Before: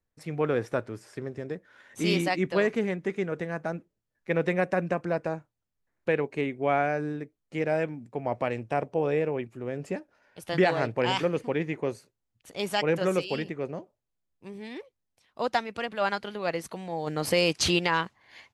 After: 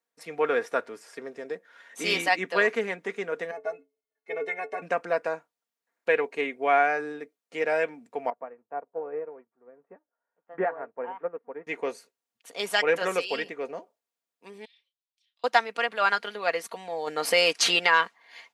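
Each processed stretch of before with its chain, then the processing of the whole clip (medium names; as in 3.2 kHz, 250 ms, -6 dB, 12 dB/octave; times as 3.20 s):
3.51–4.82 s: inharmonic resonator 130 Hz, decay 0.24 s, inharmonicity 0.03 + small resonant body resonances 420/710/2100 Hz, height 14 dB, ringing for 35 ms
8.30–11.67 s: companding laws mixed up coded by mu + low-pass 1.5 kHz 24 dB/octave + upward expansion 2.5:1, over -38 dBFS
14.65–15.44 s: compression 3:1, threshold -47 dBFS + ladder band-pass 3.9 kHz, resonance 50% + doubling 33 ms -9.5 dB
whole clip: high-pass 460 Hz 12 dB/octave; comb 4.3 ms, depth 47%; dynamic bell 1.7 kHz, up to +4 dB, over -38 dBFS, Q 1.1; trim +2 dB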